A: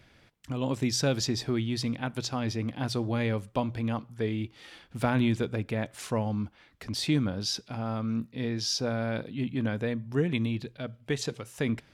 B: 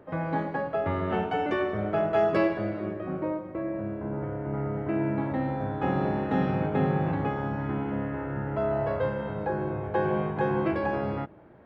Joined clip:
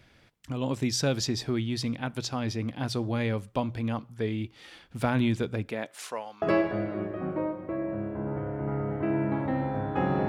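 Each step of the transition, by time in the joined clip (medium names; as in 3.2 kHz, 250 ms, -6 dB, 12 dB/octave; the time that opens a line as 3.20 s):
A
5.69–6.42 s: high-pass 220 Hz -> 1.1 kHz
6.42 s: go over to B from 2.28 s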